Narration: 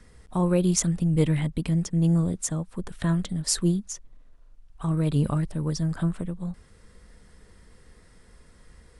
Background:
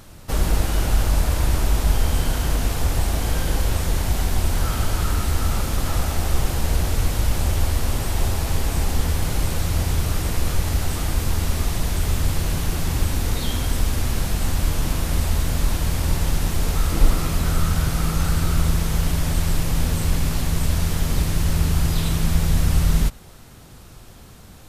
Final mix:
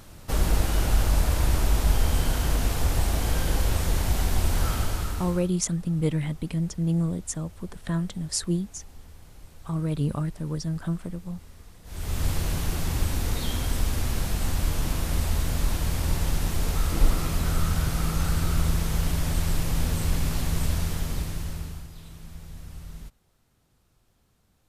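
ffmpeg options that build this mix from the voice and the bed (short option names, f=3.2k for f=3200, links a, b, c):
-filter_complex "[0:a]adelay=4850,volume=-3dB[a];[1:a]volume=19.5dB,afade=t=out:st=4.68:d=0.83:silence=0.0630957,afade=t=in:st=11.84:d=0.42:silence=0.0749894,afade=t=out:st=20.63:d=1.25:silence=0.11885[b];[a][b]amix=inputs=2:normalize=0"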